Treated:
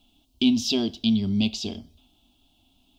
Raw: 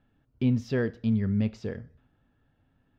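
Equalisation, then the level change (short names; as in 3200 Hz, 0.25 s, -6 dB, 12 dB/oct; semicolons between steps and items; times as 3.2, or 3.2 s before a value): bell 700 Hz +5.5 dB 0.27 oct; resonant high shelf 2200 Hz +13.5 dB, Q 3; fixed phaser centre 490 Hz, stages 6; +6.5 dB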